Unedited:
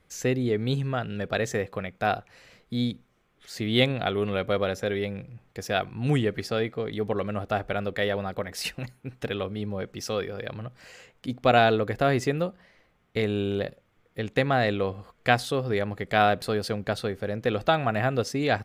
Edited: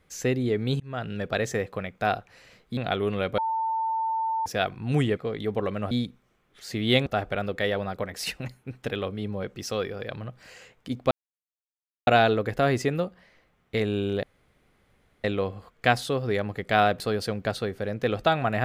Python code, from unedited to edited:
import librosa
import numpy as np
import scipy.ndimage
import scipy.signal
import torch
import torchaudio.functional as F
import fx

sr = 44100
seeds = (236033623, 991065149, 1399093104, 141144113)

y = fx.edit(x, sr, fx.fade_in_span(start_s=0.8, length_s=0.26),
    fx.move(start_s=2.77, length_s=1.15, to_s=7.44),
    fx.bleep(start_s=4.53, length_s=1.08, hz=895.0, db=-24.0),
    fx.cut(start_s=6.32, length_s=0.38),
    fx.insert_silence(at_s=11.49, length_s=0.96),
    fx.room_tone_fill(start_s=13.65, length_s=1.01), tone=tone)